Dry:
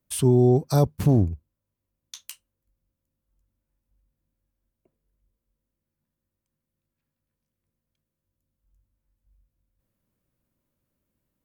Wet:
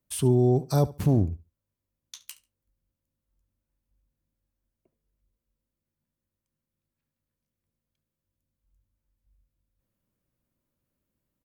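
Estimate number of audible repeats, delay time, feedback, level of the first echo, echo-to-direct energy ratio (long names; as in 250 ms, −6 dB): 2, 71 ms, 20%, −19.0 dB, −19.0 dB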